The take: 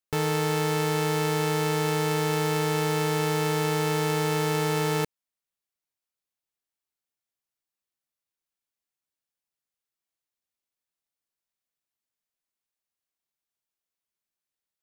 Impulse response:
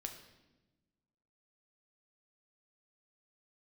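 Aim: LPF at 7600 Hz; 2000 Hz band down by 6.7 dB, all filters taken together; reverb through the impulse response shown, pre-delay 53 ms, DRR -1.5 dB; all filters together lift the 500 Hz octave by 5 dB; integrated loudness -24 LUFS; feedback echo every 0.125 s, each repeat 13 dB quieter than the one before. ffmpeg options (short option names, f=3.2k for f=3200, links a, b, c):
-filter_complex "[0:a]lowpass=7.6k,equalizer=f=500:t=o:g=6,equalizer=f=2k:t=o:g=-8.5,aecho=1:1:125|250|375:0.224|0.0493|0.0108,asplit=2[a][b];[1:a]atrim=start_sample=2205,adelay=53[c];[b][c]afir=irnorm=-1:irlink=0,volume=4dB[d];[a][d]amix=inputs=2:normalize=0,volume=-2dB"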